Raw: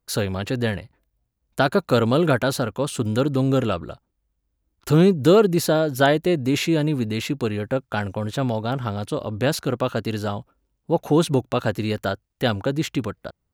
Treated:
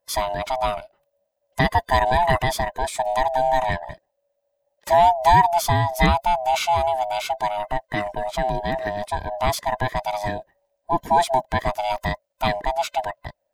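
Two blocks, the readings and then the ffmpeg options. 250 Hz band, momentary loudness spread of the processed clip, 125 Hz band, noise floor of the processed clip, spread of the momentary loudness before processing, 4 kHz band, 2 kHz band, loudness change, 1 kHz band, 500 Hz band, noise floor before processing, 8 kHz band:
−10.5 dB, 11 LU, −5.0 dB, −76 dBFS, 11 LU, −0.5 dB, +2.0 dB, 0.0 dB, +10.5 dB, −2.5 dB, −76 dBFS, 0.0 dB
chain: -af "afftfilt=real='real(if(lt(b,1008),b+24*(1-2*mod(floor(b/24),2)),b),0)':imag='imag(if(lt(b,1008),b+24*(1-2*mod(floor(b/24),2)),b),0)':win_size=2048:overlap=0.75"

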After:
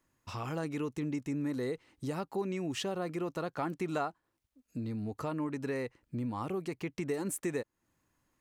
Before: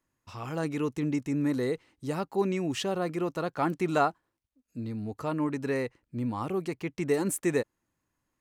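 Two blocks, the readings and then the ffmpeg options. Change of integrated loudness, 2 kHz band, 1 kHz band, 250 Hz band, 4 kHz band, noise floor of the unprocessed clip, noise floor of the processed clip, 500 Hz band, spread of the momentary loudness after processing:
−6.0 dB, −6.0 dB, −7.0 dB, −5.5 dB, −4.0 dB, −82 dBFS, −82 dBFS, −6.5 dB, 5 LU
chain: -af "acompressor=threshold=-41dB:ratio=2.5,volume=4dB"

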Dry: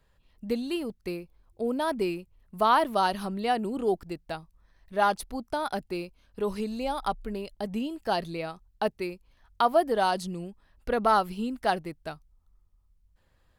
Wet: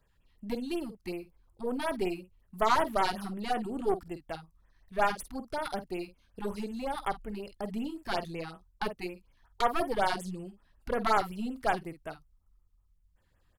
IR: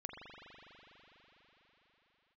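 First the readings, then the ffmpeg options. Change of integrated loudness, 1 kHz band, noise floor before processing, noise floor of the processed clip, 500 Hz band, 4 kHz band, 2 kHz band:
−4.0 dB, −4.5 dB, −67 dBFS, −69 dBFS, −5.0 dB, −4.0 dB, −1.5 dB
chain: -filter_complex "[0:a]asplit=2[link_01][link_02];[link_02]adelay=49,volume=-11.5dB[link_03];[link_01][link_03]amix=inputs=2:normalize=0,aeval=exprs='0.335*(cos(1*acos(clip(val(0)/0.335,-1,1)))-cos(1*PI/2))+0.0422*(cos(6*acos(clip(val(0)/0.335,-1,1)))-cos(6*PI/2))':channel_layout=same,afftfilt=real='re*(1-between(b*sr/1024,460*pow(5100/460,0.5+0.5*sin(2*PI*5.4*pts/sr))/1.41,460*pow(5100/460,0.5+0.5*sin(2*PI*5.4*pts/sr))*1.41))':imag='im*(1-between(b*sr/1024,460*pow(5100/460,0.5+0.5*sin(2*PI*5.4*pts/sr))/1.41,460*pow(5100/460,0.5+0.5*sin(2*PI*5.4*pts/sr))*1.41))':win_size=1024:overlap=0.75,volume=-3.5dB"

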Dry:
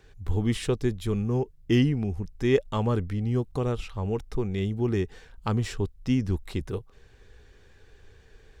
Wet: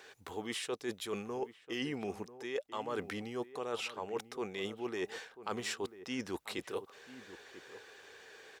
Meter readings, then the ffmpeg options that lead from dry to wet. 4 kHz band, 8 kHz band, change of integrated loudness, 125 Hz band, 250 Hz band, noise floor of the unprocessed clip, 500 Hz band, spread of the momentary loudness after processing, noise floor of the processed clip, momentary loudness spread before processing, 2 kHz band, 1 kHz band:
−3.0 dB, −1.5 dB, −12.0 dB, −26.0 dB, −14.0 dB, −56 dBFS, −9.5 dB, 14 LU, −63 dBFS, 8 LU, −3.0 dB, −5.0 dB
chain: -filter_complex "[0:a]highpass=540,areverse,acompressor=threshold=-42dB:ratio=12,areverse,asplit=2[link_01][link_02];[link_02]adelay=991.3,volume=-14dB,highshelf=frequency=4000:gain=-22.3[link_03];[link_01][link_03]amix=inputs=2:normalize=0,volume=7.5dB"

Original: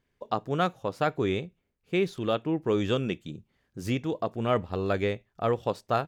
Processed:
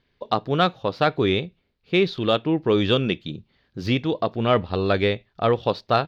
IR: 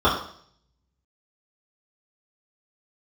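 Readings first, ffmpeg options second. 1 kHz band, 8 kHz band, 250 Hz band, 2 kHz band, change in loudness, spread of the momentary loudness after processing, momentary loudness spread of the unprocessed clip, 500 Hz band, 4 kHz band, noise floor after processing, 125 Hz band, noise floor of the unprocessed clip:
+6.5 dB, can't be measured, +6.0 dB, +7.5 dB, +6.5 dB, 8 LU, 8 LU, +6.0 dB, +11.5 dB, −70 dBFS, +6.0 dB, −77 dBFS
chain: -af "highshelf=frequency=6000:width_type=q:width=3:gain=-13.5,acontrast=60"

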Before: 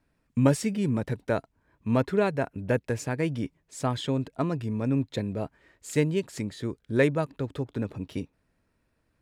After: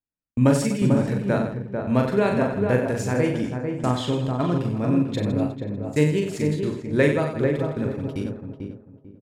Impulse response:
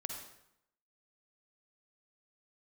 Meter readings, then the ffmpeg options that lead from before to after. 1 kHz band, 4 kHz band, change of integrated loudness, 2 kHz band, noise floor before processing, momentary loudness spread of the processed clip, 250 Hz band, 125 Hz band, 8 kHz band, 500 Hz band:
+5.0 dB, +4.0 dB, +5.5 dB, +4.5 dB, −74 dBFS, 9 LU, +6.0 dB, +5.5 dB, +3.0 dB, +5.5 dB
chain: -filter_complex "[0:a]asplit=2[link_01][link_02];[link_02]aecho=0:1:40|92|159.6|247.5|361.7:0.631|0.398|0.251|0.158|0.1[link_03];[link_01][link_03]amix=inputs=2:normalize=0,agate=range=-30dB:threshold=-34dB:ratio=16:detection=peak,asplit=2[link_04][link_05];[link_05]adelay=444,lowpass=frequency=1100:poles=1,volume=-4dB,asplit=2[link_06][link_07];[link_07]adelay=444,lowpass=frequency=1100:poles=1,volume=0.27,asplit=2[link_08][link_09];[link_09]adelay=444,lowpass=frequency=1100:poles=1,volume=0.27,asplit=2[link_10][link_11];[link_11]adelay=444,lowpass=frequency=1100:poles=1,volume=0.27[link_12];[link_06][link_08][link_10][link_12]amix=inputs=4:normalize=0[link_13];[link_04][link_13]amix=inputs=2:normalize=0,volume=2dB"

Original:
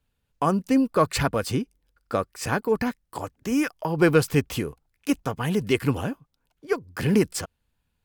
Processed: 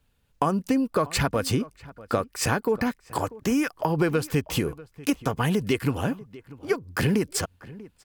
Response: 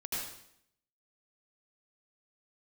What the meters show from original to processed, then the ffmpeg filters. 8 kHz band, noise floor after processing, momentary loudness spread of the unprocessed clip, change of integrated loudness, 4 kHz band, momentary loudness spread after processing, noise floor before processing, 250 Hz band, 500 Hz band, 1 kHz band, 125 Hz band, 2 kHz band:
+2.5 dB, −66 dBFS, 13 LU, −1.0 dB, +1.5 dB, 10 LU, −76 dBFS, −1.5 dB, −2.0 dB, −0.5 dB, 0.0 dB, −0.5 dB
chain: -filter_complex "[0:a]acompressor=threshold=-27dB:ratio=6,asplit=2[link_01][link_02];[link_02]adelay=641.4,volume=-19dB,highshelf=frequency=4000:gain=-14.4[link_03];[link_01][link_03]amix=inputs=2:normalize=0,volume=6.5dB"

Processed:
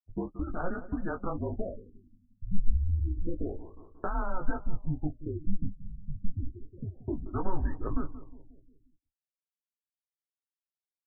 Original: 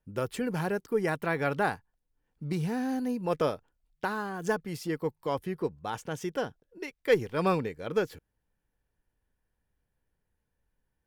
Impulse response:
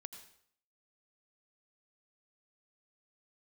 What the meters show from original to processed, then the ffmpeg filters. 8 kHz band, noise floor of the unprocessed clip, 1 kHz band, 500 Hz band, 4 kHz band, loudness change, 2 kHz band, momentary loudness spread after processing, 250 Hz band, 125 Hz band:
below −30 dB, −82 dBFS, −7.0 dB, −10.5 dB, below −40 dB, −5.0 dB, −11.5 dB, 11 LU, −3.5 dB, +1.5 dB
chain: -filter_complex "[0:a]afftfilt=real='re*gte(hypot(re,im),0.0158)':imag='im*gte(hypot(re,im),0.0158)':win_size=1024:overlap=0.75,agate=range=-10dB:threshold=-45dB:ratio=16:detection=peak,highpass=frequency=200:width_type=q:width=0.5412,highpass=frequency=200:width_type=q:width=1.307,lowpass=frequency=3200:width_type=q:width=0.5176,lowpass=frequency=3200:width_type=q:width=0.7071,lowpass=frequency=3200:width_type=q:width=1.932,afreqshift=-180,asplit=2[link_01][link_02];[link_02]alimiter=limit=-20.5dB:level=0:latency=1:release=98,volume=1dB[link_03];[link_01][link_03]amix=inputs=2:normalize=0,acompressor=threshold=-26dB:ratio=8,flanger=delay=7.8:depth=7.9:regen=-23:speed=1.9:shape=triangular,asubboost=boost=7.5:cutoff=64,asplit=2[link_04][link_05];[link_05]adelay=20,volume=-6.5dB[link_06];[link_04][link_06]amix=inputs=2:normalize=0,asplit=2[link_07][link_08];[link_08]adelay=179,lowpass=frequency=2000:poles=1,volume=-14.5dB,asplit=2[link_09][link_10];[link_10]adelay=179,lowpass=frequency=2000:poles=1,volume=0.53,asplit=2[link_11][link_12];[link_12]adelay=179,lowpass=frequency=2000:poles=1,volume=0.53,asplit=2[link_13][link_14];[link_14]adelay=179,lowpass=frequency=2000:poles=1,volume=0.53,asplit=2[link_15][link_16];[link_16]adelay=179,lowpass=frequency=2000:poles=1,volume=0.53[link_17];[link_09][link_11][link_13][link_15][link_17]amix=inputs=5:normalize=0[link_18];[link_07][link_18]amix=inputs=2:normalize=0,afftfilt=real='re*lt(b*sr/1024,240*pow(1900/240,0.5+0.5*sin(2*PI*0.29*pts/sr)))':imag='im*lt(b*sr/1024,240*pow(1900/240,0.5+0.5*sin(2*PI*0.29*pts/sr)))':win_size=1024:overlap=0.75"

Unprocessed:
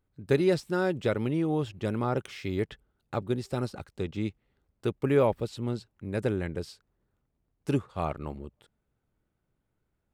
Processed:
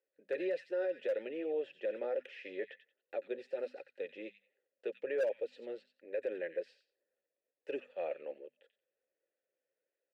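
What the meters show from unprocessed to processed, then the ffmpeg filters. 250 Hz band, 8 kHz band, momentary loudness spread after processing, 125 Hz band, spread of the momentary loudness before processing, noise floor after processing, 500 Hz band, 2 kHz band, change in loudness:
−17.5 dB, can't be measured, 12 LU, below −40 dB, 12 LU, below −85 dBFS, −6.5 dB, −8.0 dB, −9.0 dB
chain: -filter_complex "[0:a]asplit=3[link_01][link_02][link_03];[link_01]bandpass=frequency=530:width_type=q:width=8,volume=0dB[link_04];[link_02]bandpass=frequency=1840:width_type=q:width=8,volume=-6dB[link_05];[link_03]bandpass=frequency=2480:width_type=q:width=8,volume=-9dB[link_06];[link_04][link_05][link_06]amix=inputs=3:normalize=0,bass=frequency=250:gain=-14,treble=frequency=4000:gain=-6,bandreject=frequency=50:width_type=h:width=6,bandreject=frequency=100:width_type=h:width=6,bandreject=frequency=150:width_type=h:width=6,bandreject=frequency=200:width_type=h:width=6,bandreject=frequency=250:width_type=h:width=6,acrossover=split=140|1700[link_07][link_08][link_09];[link_07]acrusher=bits=4:dc=4:mix=0:aa=0.000001[link_10];[link_09]aecho=1:1:90|180|270:0.398|0.0796|0.0159[link_11];[link_10][link_08][link_11]amix=inputs=3:normalize=0,flanger=delay=1.9:depth=4.4:regen=-37:speed=1.3:shape=triangular,volume=30dB,asoftclip=hard,volume=-30dB,alimiter=level_in=14dB:limit=-24dB:level=0:latency=1:release=37,volume=-14dB,volume=10dB"

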